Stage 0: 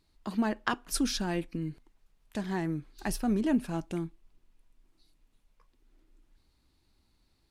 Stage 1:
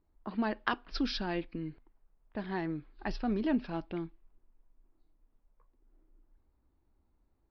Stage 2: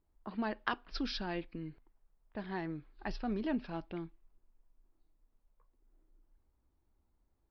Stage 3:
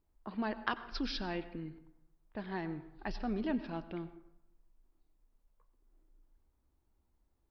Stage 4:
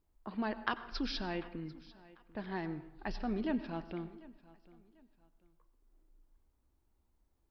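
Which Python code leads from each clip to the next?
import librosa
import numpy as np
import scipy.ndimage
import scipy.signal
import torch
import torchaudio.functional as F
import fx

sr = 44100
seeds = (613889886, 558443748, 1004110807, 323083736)

y1 = fx.peak_eq(x, sr, hz=150.0, db=-5.5, octaves=1.3)
y1 = fx.env_lowpass(y1, sr, base_hz=1000.0, full_db=-26.5)
y1 = scipy.signal.sosfilt(scipy.signal.butter(12, 5100.0, 'lowpass', fs=sr, output='sos'), y1)
y1 = y1 * 10.0 ** (-1.0 / 20.0)
y2 = fx.peak_eq(y1, sr, hz=280.0, db=-2.5, octaves=0.77)
y2 = y2 * 10.0 ** (-3.0 / 20.0)
y3 = fx.rev_plate(y2, sr, seeds[0], rt60_s=0.86, hf_ratio=0.5, predelay_ms=80, drr_db=14.0)
y4 = fx.echo_feedback(y3, sr, ms=744, feedback_pct=31, wet_db=-21.0)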